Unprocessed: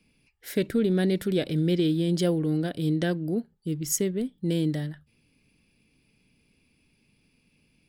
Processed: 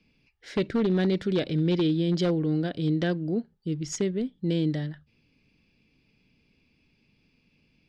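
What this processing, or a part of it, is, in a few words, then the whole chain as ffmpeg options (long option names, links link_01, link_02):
synthesiser wavefolder: -af "aeval=exprs='0.126*(abs(mod(val(0)/0.126+3,4)-2)-1)':channel_layout=same,lowpass=frequency=5800:width=0.5412,lowpass=frequency=5800:width=1.3066"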